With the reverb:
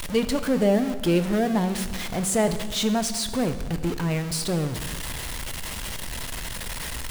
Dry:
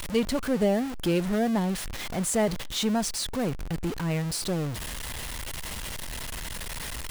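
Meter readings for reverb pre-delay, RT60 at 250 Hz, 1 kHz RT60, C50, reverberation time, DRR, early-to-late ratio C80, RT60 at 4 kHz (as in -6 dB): 3 ms, 1.9 s, 1.4 s, 11.5 dB, 1.6 s, 9.5 dB, 12.5 dB, 1.4 s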